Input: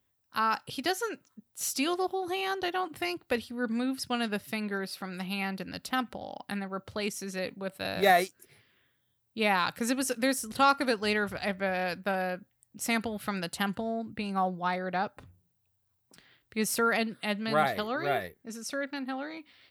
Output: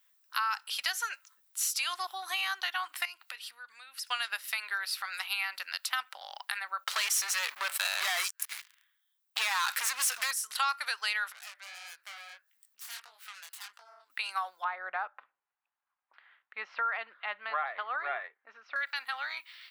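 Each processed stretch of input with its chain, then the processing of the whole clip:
3.05–4.07 s: peaking EQ 2.7 kHz +3.5 dB 0.23 oct + compression 16:1, threshold -42 dBFS
6.84–10.31 s: compression 2:1, threshold -34 dBFS + waveshaping leveller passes 5
11.32–14.10 s: self-modulated delay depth 0.55 ms + chorus 1.6 Hz, delay 18 ms, depth 7.6 ms + compression 2:1, threshold -59 dBFS
14.64–18.76 s: Gaussian low-pass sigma 3 samples + tilt EQ -4.5 dB/octave
whole clip: high-pass 1.1 kHz 24 dB/octave; compression 3:1, threshold -39 dBFS; trim +8.5 dB

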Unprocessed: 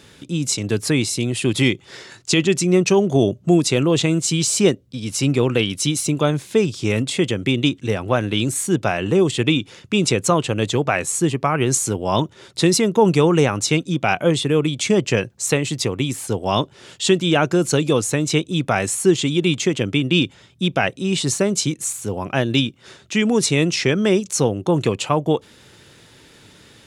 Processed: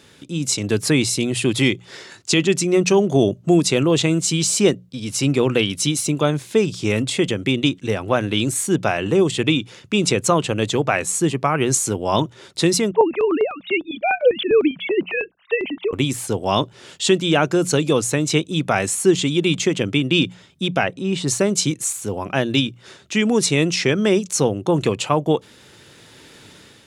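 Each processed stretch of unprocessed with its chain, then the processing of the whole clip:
12.91–15.93 s: formants replaced by sine waves + step-sequenced notch 10 Hz 230–1700 Hz
20.83–21.28 s: treble shelf 3.5 kHz -11 dB + upward compressor, threshold -26 dBFS
whole clip: bass shelf 71 Hz -6 dB; hum notches 60/120/180 Hz; level rider gain up to 5.5 dB; trim -2 dB

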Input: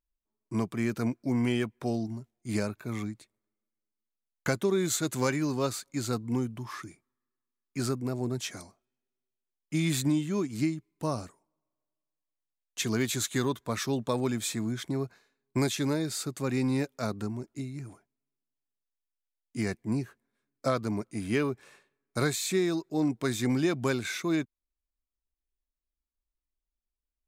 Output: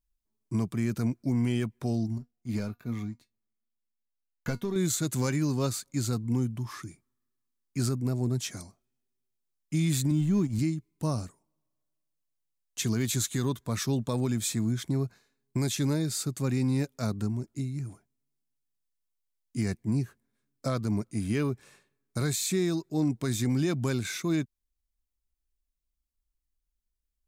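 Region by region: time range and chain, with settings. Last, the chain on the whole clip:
2.18–4.76 s: peaking EQ 8.6 kHz -13 dB 0.75 oct + waveshaping leveller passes 1 + feedback comb 240 Hz, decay 0.15 s, mix 70%
10.11–10.59 s: companding laws mixed up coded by A + tone controls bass +8 dB, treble -3 dB
whole clip: tone controls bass +10 dB, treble +6 dB; peak limiter -16 dBFS; trim -3 dB

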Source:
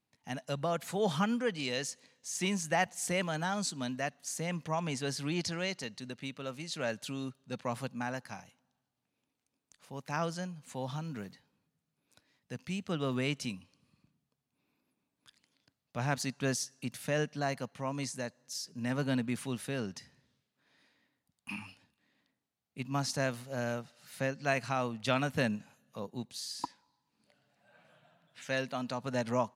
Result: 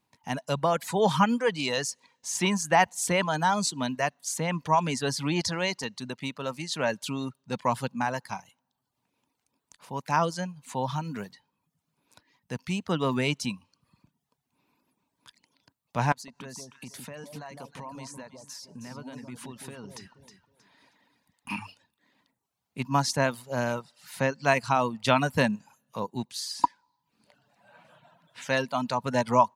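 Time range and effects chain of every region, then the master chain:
16.12–21.50 s: compression 5:1, threshold -47 dBFS + echo whose repeats swap between lows and highs 158 ms, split 970 Hz, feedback 53%, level -3.5 dB
whole clip: peaking EQ 960 Hz +10 dB 0.32 oct; reverb removal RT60 0.6 s; trim +7 dB

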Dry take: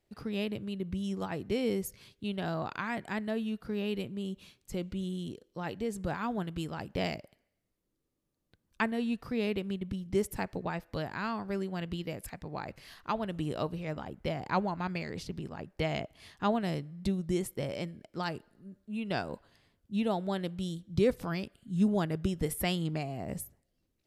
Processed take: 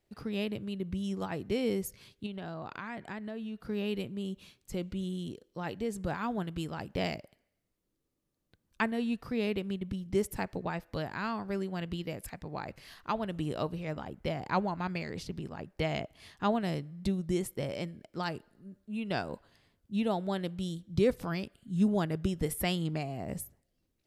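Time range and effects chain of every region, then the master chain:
2.26–3.60 s: treble shelf 8.2 kHz -11 dB + compression 3:1, threshold -37 dBFS
whole clip: none

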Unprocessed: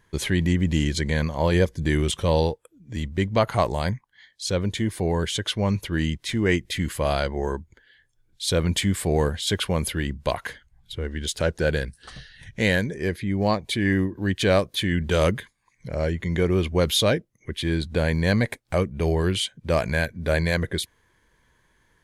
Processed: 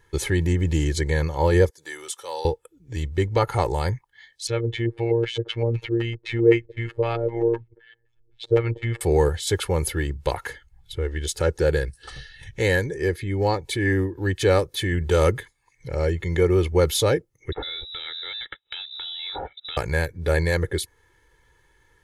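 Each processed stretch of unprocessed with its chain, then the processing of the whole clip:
1.70–2.45 s: high-pass 1.1 kHz + peaking EQ 2.5 kHz -10.5 dB 1.6 oct
4.47–9.01 s: treble shelf 10 kHz +6 dB + LFO low-pass square 3.9 Hz 440–2600 Hz + robot voice 116 Hz
17.52–19.77 s: compression 4:1, threshold -32 dBFS + waveshaping leveller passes 1 + frequency inversion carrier 3.8 kHz
whole clip: dynamic bell 3.1 kHz, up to -7 dB, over -42 dBFS, Q 1.4; comb 2.3 ms, depth 78%

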